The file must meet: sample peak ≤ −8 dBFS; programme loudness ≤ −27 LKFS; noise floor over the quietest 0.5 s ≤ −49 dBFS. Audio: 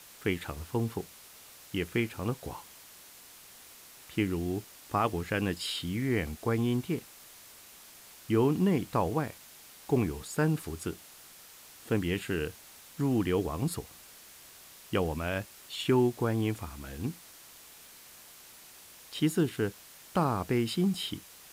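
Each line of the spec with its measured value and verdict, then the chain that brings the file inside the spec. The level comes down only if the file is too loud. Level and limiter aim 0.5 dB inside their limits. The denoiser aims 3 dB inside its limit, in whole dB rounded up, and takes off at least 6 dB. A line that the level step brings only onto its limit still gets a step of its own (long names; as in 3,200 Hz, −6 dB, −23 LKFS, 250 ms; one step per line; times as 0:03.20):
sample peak −15.0 dBFS: in spec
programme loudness −31.5 LKFS: in spec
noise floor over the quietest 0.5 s −53 dBFS: in spec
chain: no processing needed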